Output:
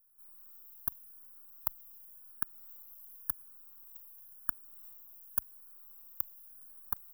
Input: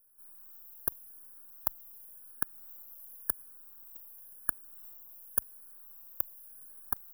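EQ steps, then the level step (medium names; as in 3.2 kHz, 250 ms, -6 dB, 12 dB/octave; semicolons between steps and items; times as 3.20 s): static phaser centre 2 kHz, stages 6; -1.5 dB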